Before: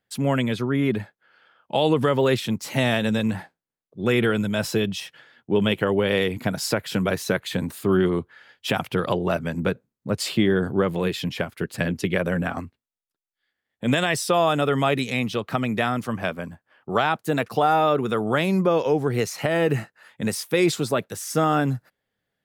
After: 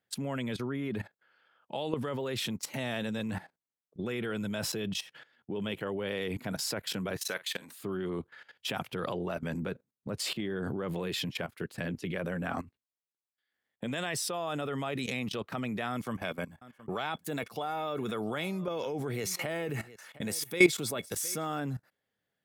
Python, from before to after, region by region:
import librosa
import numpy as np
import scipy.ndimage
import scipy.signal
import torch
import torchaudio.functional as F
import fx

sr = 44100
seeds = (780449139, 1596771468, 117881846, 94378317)

y = fx.chain(x, sr, fx.highpass(hz=1500.0, slope=6),
    fx.doubler(ms=48.0, db=-14), at=(7.19, 7.8))
y = fx.chain(y, sr, fx.high_shelf(hz=7200.0, db=7.0),
    fx.small_body(hz=(2200.0, 3400.0), ring_ms=70, db=13),
    fx.echo_single(ms=713, db=-23.5), at=(15.9, 21.6))
y = fx.highpass(y, sr, hz=99.0, slope=6)
y = fx.level_steps(y, sr, step_db=17)